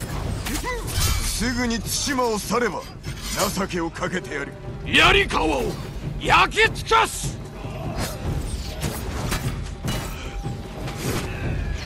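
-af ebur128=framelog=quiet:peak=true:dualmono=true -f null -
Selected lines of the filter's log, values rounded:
Integrated loudness:
  I:         -20.0 LUFS
  Threshold: -30.1 LUFS
Loudness range:
  LRA:         9.4 LU
  Threshold: -39.5 LUFS
  LRA low:   -25.7 LUFS
  LRA high:  -16.3 LUFS
True peak:
  Peak:       -7.4 dBFS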